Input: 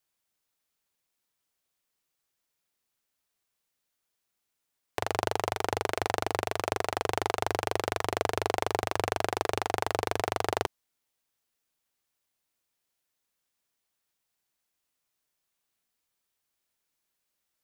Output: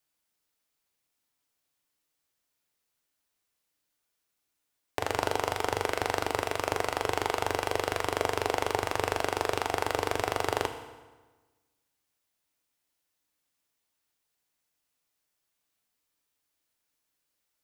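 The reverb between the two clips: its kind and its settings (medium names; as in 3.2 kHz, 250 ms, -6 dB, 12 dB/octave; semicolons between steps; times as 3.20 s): FDN reverb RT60 1.3 s, low-frequency decay 1.1×, high-frequency decay 0.8×, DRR 6 dB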